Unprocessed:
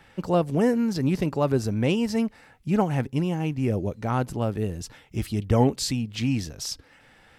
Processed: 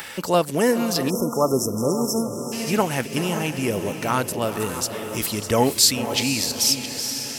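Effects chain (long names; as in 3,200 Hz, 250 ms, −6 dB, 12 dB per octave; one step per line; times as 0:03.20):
delay that plays each chunk backwards 343 ms, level −12 dB
RIAA equalisation recording
notch filter 770 Hz, Q 12
on a send: feedback delay with all-pass diffusion 500 ms, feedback 48%, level −10 dB
on the sum: dynamic equaliser 8,000 Hz, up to −4 dB, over −39 dBFS, Q 0.97
in parallel at +3 dB: upward compression, threshold −27 dBFS
on the sum: time-frequency box erased 0:01.10–0:02.53, 1,400–5,200 Hz
level −1.5 dB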